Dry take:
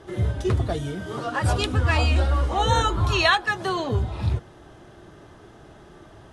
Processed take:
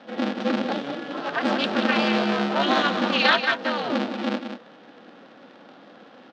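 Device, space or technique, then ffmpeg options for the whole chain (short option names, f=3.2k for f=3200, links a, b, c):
ring modulator pedal into a guitar cabinet: -af "aeval=exprs='val(0)*sgn(sin(2*PI*140*n/s))':c=same,highpass=f=230:w=0.5412,highpass=f=230:w=1.3066,highpass=78,equalizer=f=130:t=q:w=4:g=8,equalizer=f=420:t=q:w=4:g=-6,equalizer=f=1k:t=q:w=4:g=-6,equalizer=f=2.1k:t=q:w=4:g=-4,lowpass=f=4.3k:w=0.5412,lowpass=f=4.3k:w=1.3066,aecho=1:1:184:0.376,volume=2dB"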